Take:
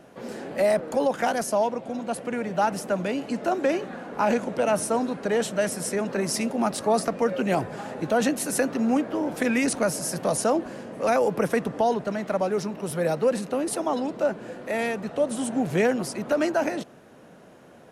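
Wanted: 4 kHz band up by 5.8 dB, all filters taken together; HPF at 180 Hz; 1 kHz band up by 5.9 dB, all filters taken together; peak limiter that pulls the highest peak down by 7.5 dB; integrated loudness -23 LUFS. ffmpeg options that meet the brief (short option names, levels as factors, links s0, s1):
-af "highpass=180,equalizer=f=1000:t=o:g=8,equalizer=f=4000:t=o:g=7.5,volume=1.33,alimiter=limit=0.251:level=0:latency=1"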